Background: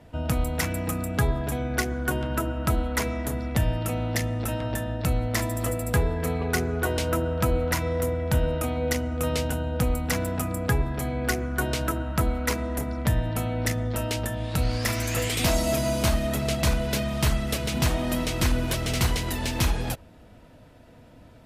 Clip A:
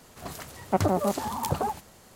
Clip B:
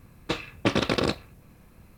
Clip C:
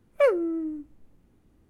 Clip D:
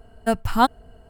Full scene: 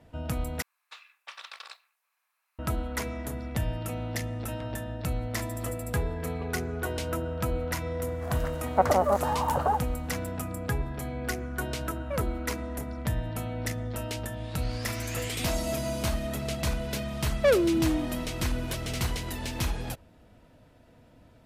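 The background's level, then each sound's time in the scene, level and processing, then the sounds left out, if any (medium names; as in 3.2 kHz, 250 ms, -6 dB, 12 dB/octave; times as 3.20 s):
background -6 dB
0.62 s: replace with B -14.5 dB + high-pass 950 Hz 24 dB/octave
8.05 s: add A -8.5 dB + high-order bell 950 Hz +12.5 dB 2.3 oct
11.90 s: add C -14.5 dB
17.24 s: add C -3.5 dB + waveshaping leveller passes 2
not used: D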